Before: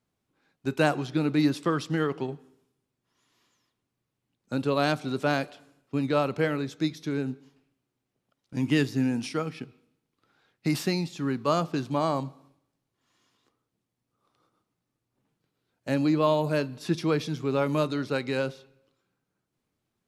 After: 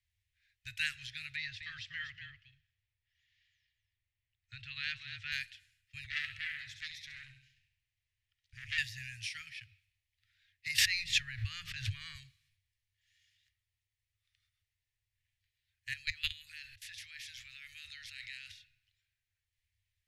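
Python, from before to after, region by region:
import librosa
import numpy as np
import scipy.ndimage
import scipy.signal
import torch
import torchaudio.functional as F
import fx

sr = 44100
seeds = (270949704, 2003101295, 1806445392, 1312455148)

y = fx.chain(x, sr, fx.air_absorb(metres=160.0),
    fx.echo_single(ms=242, db=-9.0), at=(1.36, 5.32))
y = fx.chain(y, sr, fx.high_shelf(hz=10000.0, db=-8.5),
    fx.room_flutter(wall_m=11.5, rt60_s=0.55),
    fx.transformer_sat(knee_hz=1600.0), at=(6.04, 8.78))
y = fx.chain(y, sr, fx.high_shelf(hz=2700.0, db=-11.0),
    fx.hum_notches(base_hz=60, count=3),
    fx.env_flatten(amount_pct=100), at=(10.78, 12.15))
y = fx.spec_clip(y, sr, under_db=21, at=(15.92, 18.51), fade=0.02)
y = fx.level_steps(y, sr, step_db=22, at=(15.92, 18.51), fade=0.02)
y = scipy.signal.sosfilt(scipy.signal.cheby1(5, 1.0, [100.0, 1800.0], 'bandstop', fs=sr, output='sos'), y)
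y = fx.high_shelf(y, sr, hz=3500.0, db=-10.5)
y = y * 10.0 ** (4.5 / 20.0)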